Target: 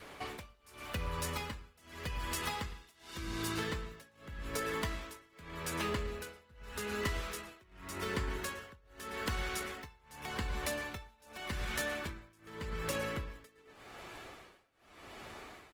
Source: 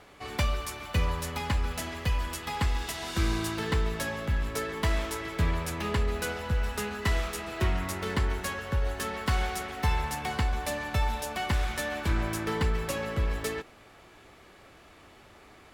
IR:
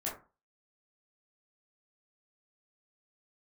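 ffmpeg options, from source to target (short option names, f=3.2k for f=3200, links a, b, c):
-filter_complex "[0:a]aecho=1:1:111:0.188,acrossover=split=630[a][b];[b]volume=28.5dB,asoftclip=hard,volume=-28.5dB[c];[a][c]amix=inputs=2:normalize=0,adynamicequalizer=threshold=0.00282:dfrequency=760:dqfactor=3.4:tfrequency=760:tqfactor=3.4:attack=5:release=100:ratio=0.375:range=3:mode=cutabove:tftype=bell,asettb=1/sr,asplit=3[d][e][f];[d]atrim=end=5.344[g];[e]atrim=start=5.34:end=5.88,asetpts=PTS-STARTPTS,afade=t=in:d=0.004:c=qsin,afade=t=out:st=0.536:d=0.004:c=qsin,highpass=f=150:p=1[h];[f]atrim=start=5.876[i];[g][h]acrossfade=d=0.004:c1=hsin:c2=qsin[j];[j][i]acrossfade=d=0.004:c1=qsin:c2=hsin,lowshelf=f=260:g=-5,asplit=2[k][l];[1:a]atrim=start_sample=2205,afade=t=out:st=0.29:d=0.01,atrim=end_sample=13230[m];[l][m]afir=irnorm=-1:irlink=0,volume=-15dB[n];[k][n]amix=inputs=2:normalize=0,acompressor=threshold=-37dB:ratio=10,tremolo=f=0.85:d=0.97,volume=5dB" -ar 48000 -c:a libopus -b:a 20k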